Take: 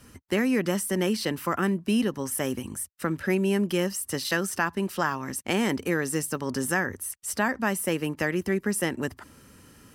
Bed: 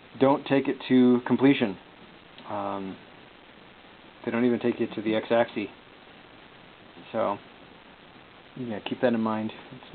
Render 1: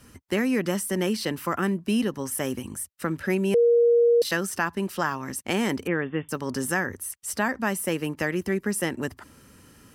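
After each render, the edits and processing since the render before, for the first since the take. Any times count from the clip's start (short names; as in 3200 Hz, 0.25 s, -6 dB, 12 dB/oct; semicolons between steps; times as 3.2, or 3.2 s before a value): 3.54–4.22 bleep 472 Hz -15 dBFS; 5.87–6.29 brick-wall FIR low-pass 3600 Hz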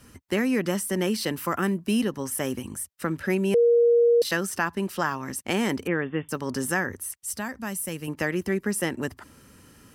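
1.13–2.03 high shelf 8300 Hz +5.5 dB; 7.23–8.08 EQ curve 120 Hz 0 dB, 350 Hz -9 dB, 1800 Hz -8 dB, 9900 Hz +1 dB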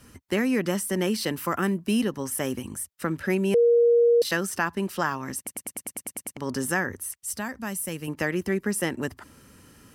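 5.37 stutter in place 0.10 s, 10 plays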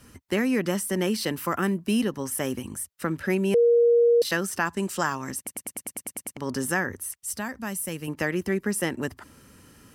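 4.65–5.31 bell 7500 Hz +12 dB 0.6 oct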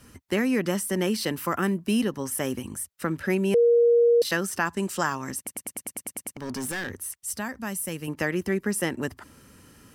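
6.31–7.25 overloaded stage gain 28 dB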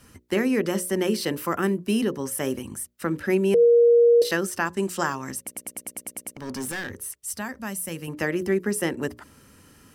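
notches 60/120/180/240/300/360/420/480/540/600 Hz; dynamic EQ 390 Hz, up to +5 dB, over -35 dBFS, Q 1.8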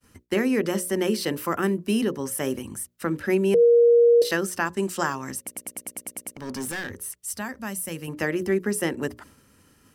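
expander -47 dBFS; notches 60/120/180 Hz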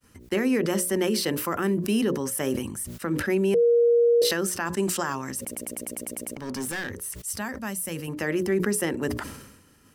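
limiter -15.5 dBFS, peak gain reduction 6 dB; sustainer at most 56 dB/s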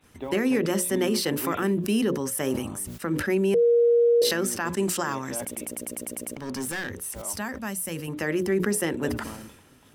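add bed -14.5 dB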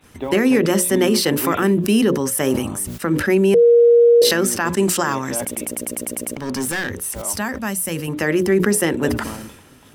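gain +8 dB; limiter -2 dBFS, peak gain reduction 2.5 dB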